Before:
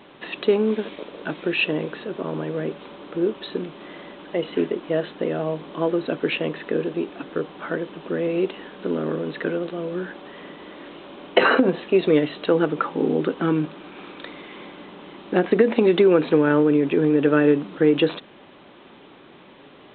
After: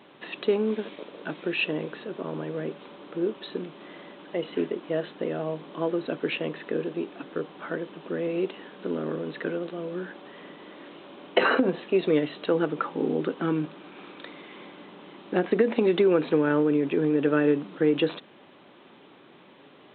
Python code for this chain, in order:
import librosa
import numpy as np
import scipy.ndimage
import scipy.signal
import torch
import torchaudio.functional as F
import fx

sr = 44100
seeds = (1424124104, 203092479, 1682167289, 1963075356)

y = scipy.signal.sosfilt(scipy.signal.butter(2, 98.0, 'highpass', fs=sr, output='sos'), x)
y = F.gain(torch.from_numpy(y), -5.0).numpy()